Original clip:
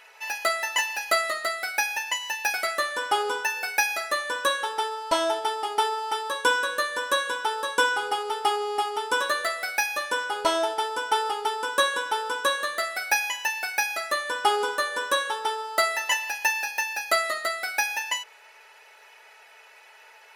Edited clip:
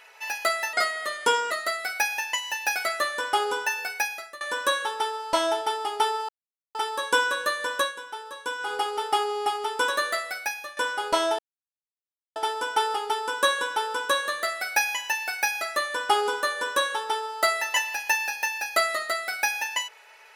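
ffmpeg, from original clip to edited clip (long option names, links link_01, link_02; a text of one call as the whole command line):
ffmpeg -i in.wav -filter_complex "[0:a]asplit=9[link_01][link_02][link_03][link_04][link_05][link_06][link_07][link_08][link_09];[link_01]atrim=end=0.734[link_10];[link_02]atrim=start=0.73:end=1.29,asetpts=PTS-STARTPTS,asetrate=31752,aresample=44100[link_11];[link_03]atrim=start=1.286:end=4.19,asetpts=PTS-STARTPTS,afade=type=out:start_time=2.254:duration=0.65:silence=0.0841395[link_12];[link_04]atrim=start=4.19:end=6.07,asetpts=PTS-STARTPTS,afade=type=in:duration=0.004:curve=hsin:silence=0.0841395,afade=type=out:start_time=1.876:duration=0.004:curve=hsin,apad=pad_dur=0.46[link_13];[link_05]atrim=start=6.07:end=7.27,asetpts=PTS-STARTPTS,afade=type=in:duration=0.004:curve=hsin,afade=type=out:start_time=1.04:duration=0.16:silence=0.316228[link_14];[link_06]atrim=start=7.27:end=7.9,asetpts=PTS-STARTPTS,volume=-10dB[link_15];[link_07]atrim=start=7.9:end=10.09,asetpts=PTS-STARTPTS,afade=type=in:duration=0.16:silence=0.316228,afade=type=out:start_time=1.53:duration=0.66:silence=0.223872[link_16];[link_08]atrim=start=10.09:end=10.71,asetpts=PTS-STARTPTS,afade=type=in:duration=0.004:curve=hsin:silence=0.223872,afade=type=out:start_time=0.616:duration=0.004:curve=hsin,apad=pad_dur=0.97[link_17];[link_09]atrim=start=10.71,asetpts=PTS-STARTPTS,afade=type=in:duration=0.004:curve=hsin[link_18];[link_10][link_11]acrossfade=duration=0.004:curve1=hsin:curve2=hsin[link_19];[link_12][link_13][link_14][link_15][link_16][link_17][link_18]concat=n=7:v=0:a=1[link_20];[link_19][link_20]acrossfade=duration=0.004:curve1=hsin:curve2=hsin" out.wav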